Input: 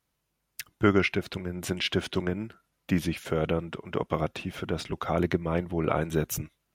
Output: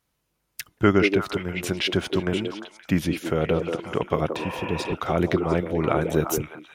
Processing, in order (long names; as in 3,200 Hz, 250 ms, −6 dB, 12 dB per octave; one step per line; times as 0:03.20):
echo through a band-pass that steps 175 ms, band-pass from 380 Hz, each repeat 1.4 octaves, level −2 dB
healed spectral selection 0:04.41–0:04.90, 490–3,000 Hz before
level +3.5 dB